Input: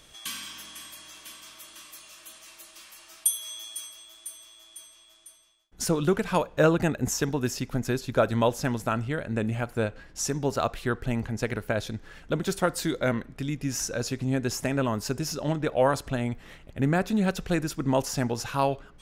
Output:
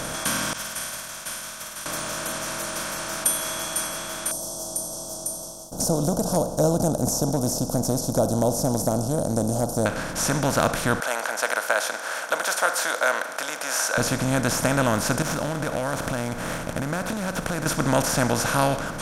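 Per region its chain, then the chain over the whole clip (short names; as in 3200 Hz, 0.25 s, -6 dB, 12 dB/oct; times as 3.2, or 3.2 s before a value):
0.53–1.86 expander -38 dBFS + passive tone stack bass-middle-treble 10-0-10 + flutter echo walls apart 9.1 m, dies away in 0.6 s
4.31–9.86 Chebyshev band-stop 750–5400 Hz, order 4 + mismatched tape noise reduction encoder only
11–13.98 steep high-pass 620 Hz + bell 1500 Hz +8.5 dB 0.27 oct
15.22–17.66 median filter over 9 samples + compressor, threshold -37 dBFS
whole clip: per-bin compression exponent 0.4; bell 390 Hz -15 dB 0.27 oct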